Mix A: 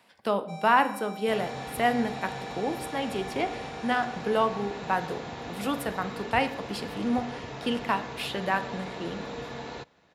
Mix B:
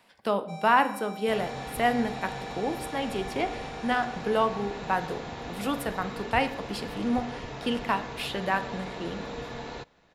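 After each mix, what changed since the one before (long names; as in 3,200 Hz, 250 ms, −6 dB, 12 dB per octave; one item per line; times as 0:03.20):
master: remove high-pass filter 72 Hz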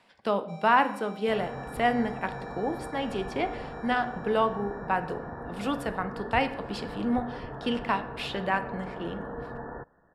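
first sound −5.0 dB
second sound: add linear-phase brick-wall low-pass 1,900 Hz
master: add high-frequency loss of the air 53 metres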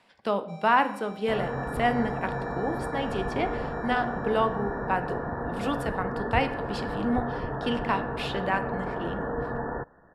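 second sound +7.0 dB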